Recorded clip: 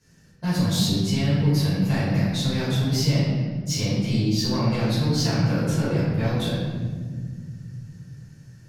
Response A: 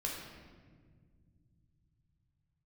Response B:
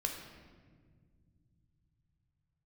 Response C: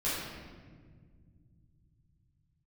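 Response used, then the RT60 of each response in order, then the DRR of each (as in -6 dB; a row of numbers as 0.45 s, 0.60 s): C; 1.7 s, 1.7 s, 1.7 s; -2.5 dB, 2.0 dB, -11.5 dB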